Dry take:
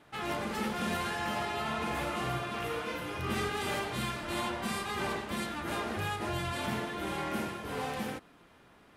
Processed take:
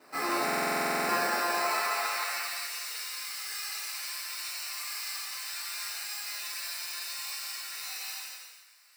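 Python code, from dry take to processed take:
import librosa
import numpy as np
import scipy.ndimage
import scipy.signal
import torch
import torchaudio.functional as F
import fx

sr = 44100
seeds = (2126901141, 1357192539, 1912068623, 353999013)

p1 = scipy.signal.sosfilt(scipy.signal.butter(2, 110.0, 'highpass', fs=sr, output='sos'), x)
p2 = fx.low_shelf(p1, sr, hz=140.0, db=-11.5)
p3 = fx.over_compress(p2, sr, threshold_db=-38.0, ratio=-1.0)
p4 = p2 + F.gain(torch.from_numpy(p3), -0.5).numpy()
p5 = fx.sample_hold(p4, sr, seeds[0], rate_hz=3300.0, jitter_pct=0)
p6 = fx.filter_sweep_highpass(p5, sr, from_hz=240.0, to_hz=3200.0, start_s=0.95, end_s=2.61, q=0.78)
p7 = p6 + fx.echo_single(p6, sr, ms=170, db=-6.5, dry=0)
p8 = fx.rev_gated(p7, sr, seeds[1], gate_ms=490, shape='falling', drr_db=-6.5)
p9 = fx.buffer_glitch(p8, sr, at_s=(0.44,), block=2048, repeats=13)
y = F.gain(torch.from_numpy(p9), -5.5).numpy()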